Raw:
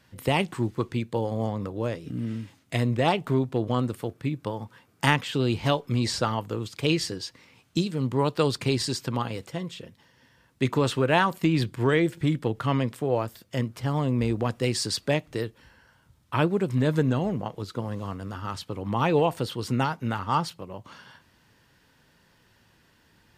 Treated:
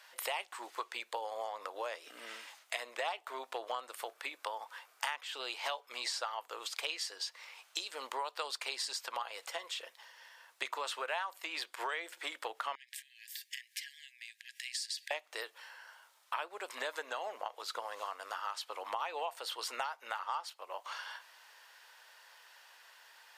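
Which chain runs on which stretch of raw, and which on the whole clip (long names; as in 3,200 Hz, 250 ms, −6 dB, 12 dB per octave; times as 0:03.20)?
0:12.75–0:15.11: downward compressor 10 to 1, threshold −33 dBFS + linear-phase brick-wall high-pass 1,600 Hz
whole clip: inverse Chebyshev high-pass filter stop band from 150 Hz, stop band 70 dB; downward compressor 5 to 1, threshold −42 dBFS; level +5.5 dB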